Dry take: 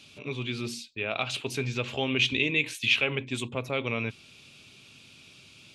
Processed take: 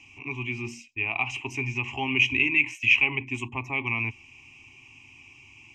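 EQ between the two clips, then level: air absorption 55 m; fixed phaser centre 900 Hz, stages 8; fixed phaser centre 2400 Hz, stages 8; +7.5 dB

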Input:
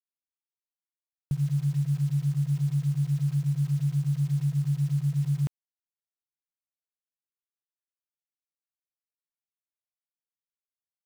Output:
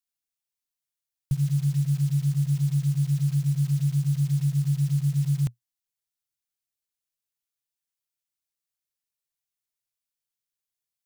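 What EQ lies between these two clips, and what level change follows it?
low shelf 65 Hz +11 dB; bell 120 Hz +9.5 dB 0.39 oct; high shelf 2100 Hz +11.5 dB; -3.5 dB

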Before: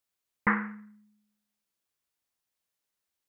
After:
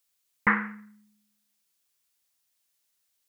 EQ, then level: high shelf 2200 Hz +11 dB; 0.0 dB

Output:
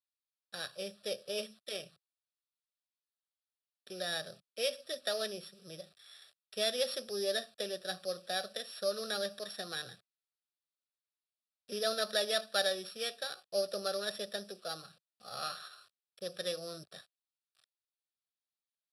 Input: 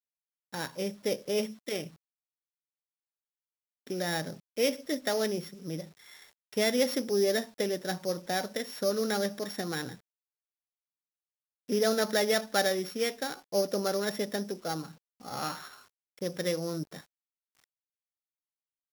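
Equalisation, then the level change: speaker cabinet 110–9800 Hz, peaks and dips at 160 Hz -6 dB, 460 Hz -6 dB, 890 Hz -8 dB, 1500 Hz -7 dB, 3000 Hz -6 dB; tilt shelf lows -5.5 dB, about 860 Hz; fixed phaser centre 1400 Hz, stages 8; 0.0 dB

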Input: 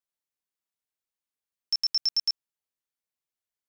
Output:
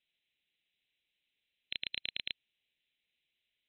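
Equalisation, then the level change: brick-wall FIR low-pass 4100 Hz; resonant high shelf 1800 Hz +9.5 dB, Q 1.5; fixed phaser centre 2700 Hz, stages 4; +6.5 dB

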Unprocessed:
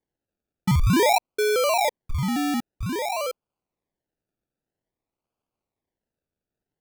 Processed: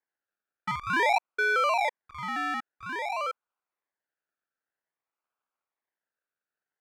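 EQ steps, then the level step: band-pass 1500 Hz, Q 2.6; +7.0 dB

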